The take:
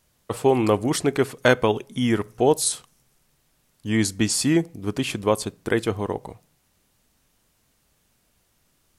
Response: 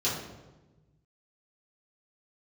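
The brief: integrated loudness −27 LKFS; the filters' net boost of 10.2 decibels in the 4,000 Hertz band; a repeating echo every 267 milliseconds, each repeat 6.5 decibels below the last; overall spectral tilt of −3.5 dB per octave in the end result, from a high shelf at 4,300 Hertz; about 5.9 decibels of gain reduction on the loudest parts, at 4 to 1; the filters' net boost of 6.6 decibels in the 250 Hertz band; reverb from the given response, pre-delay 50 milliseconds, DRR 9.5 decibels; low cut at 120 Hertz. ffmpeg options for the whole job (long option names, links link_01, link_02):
-filter_complex "[0:a]highpass=120,equalizer=frequency=250:width_type=o:gain=8.5,equalizer=frequency=4000:width_type=o:gain=8,highshelf=frequency=4300:gain=8.5,acompressor=threshold=-16dB:ratio=4,aecho=1:1:267|534|801|1068|1335|1602:0.473|0.222|0.105|0.0491|0.0231|0.0109,asplit=2[link_01][link_02];[1:a]atrim=start_sample=2205,adelay=50[link_03];[link_02][link_03]afir=irnorm=-1:irlink=0,volume=-18.5dB[link_04];[link_01][link_04]amix=inputs=2:normalize=0,volume=-6.5dB"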